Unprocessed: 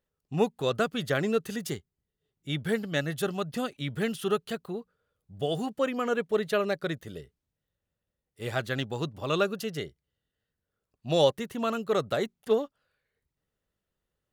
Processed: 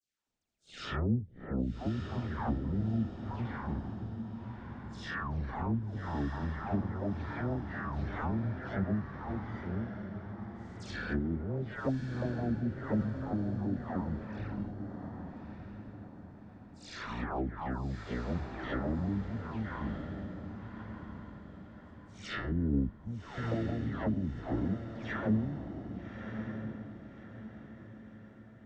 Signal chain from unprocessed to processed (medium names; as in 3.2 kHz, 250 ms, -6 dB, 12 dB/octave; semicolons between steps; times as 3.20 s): spectral contrast reduction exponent 0.59; phase dispersion lows, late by 142 ms, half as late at 2.5 kHz; in parallel at -10.5 dB: sample-and-hold 22×; on the sum: low-pass that closes with the level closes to 430 Hz, closed at -21.5 dBFS; on a send: echo that smears into a reverb 610 ms, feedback 41%, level -7 dB; on the sum: speed mistake 15 ips tape played at 7.5 ips; trim -4.5 dB